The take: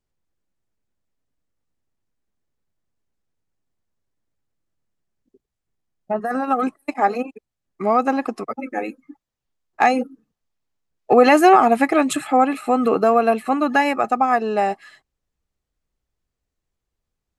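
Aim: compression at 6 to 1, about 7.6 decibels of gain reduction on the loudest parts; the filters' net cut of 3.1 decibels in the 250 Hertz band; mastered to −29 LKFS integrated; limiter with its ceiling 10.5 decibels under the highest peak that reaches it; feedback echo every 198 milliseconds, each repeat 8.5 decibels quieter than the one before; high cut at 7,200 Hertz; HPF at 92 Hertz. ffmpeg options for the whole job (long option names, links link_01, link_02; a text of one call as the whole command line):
ffmpeg -i in.wav -af "highpass=92,lowpass=7200,equalizer=frequency=250:width_type=o:gain=-3.5,acompressor=threshold=-16dB:ratio=6,alimiter=limit=-14.5dB:level=0:latency=1,aecho=1:1:198|396|594|792:0.376|0.143|0.0543|0.0206,volume=-4dB" out.wav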